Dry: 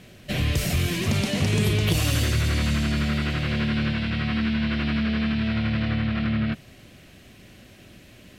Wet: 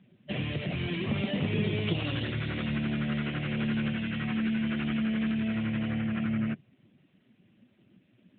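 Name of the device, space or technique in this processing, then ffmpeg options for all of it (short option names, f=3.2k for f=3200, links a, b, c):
mobile call with aggressive noise cancelling: -af "highpass=130,afftdn=nr=14:nf=-38,volume=-3.5dB" -ar 8000 -c:a libopencore_amrnb -b:a 12200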